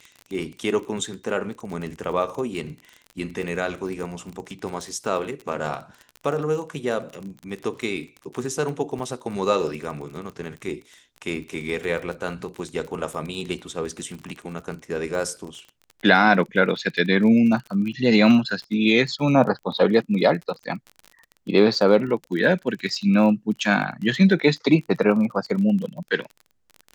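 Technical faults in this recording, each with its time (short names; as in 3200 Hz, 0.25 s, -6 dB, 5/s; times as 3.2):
crackle 32/s -31 dBFS
8.99–9 gap 5.1 ms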